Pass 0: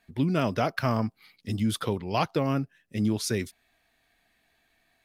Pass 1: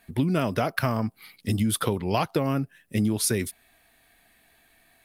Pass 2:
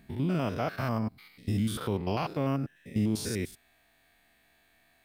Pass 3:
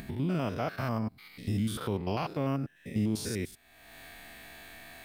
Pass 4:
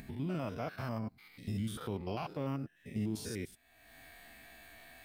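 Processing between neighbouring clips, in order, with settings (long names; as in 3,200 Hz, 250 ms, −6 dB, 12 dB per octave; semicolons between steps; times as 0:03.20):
high shelf with overshoot 7,900 Hz +6.5 dB, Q 1.5; downward compressor, threshold −28 dBFS, peak gain reduction 8.5 dB; level +7.5 dB
spectrum averaged block by block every 100 ms; parametric band 11,000 Hz −11.5 dB 0.35 octaves; level −3 dB
upward compression, threshold −31 dBFS; level −1.5 dB
spectral magnitudes quantised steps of 15 dB; level −6 dB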